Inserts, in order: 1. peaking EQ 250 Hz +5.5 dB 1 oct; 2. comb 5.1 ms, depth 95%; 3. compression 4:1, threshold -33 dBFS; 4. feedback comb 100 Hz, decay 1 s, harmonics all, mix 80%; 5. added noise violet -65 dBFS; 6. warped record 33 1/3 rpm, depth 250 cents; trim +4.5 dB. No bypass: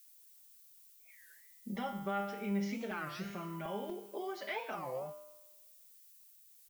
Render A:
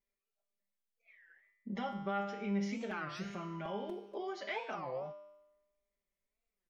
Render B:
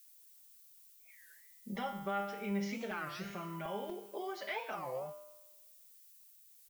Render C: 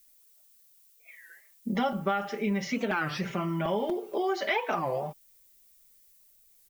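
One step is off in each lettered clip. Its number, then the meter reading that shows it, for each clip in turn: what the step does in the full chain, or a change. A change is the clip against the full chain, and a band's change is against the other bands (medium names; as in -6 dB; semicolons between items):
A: 5, 8 kHz band -4.0 dB; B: 1, 250 Hz band -2.5 dB; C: 4, 8 kHz band -3.5 dB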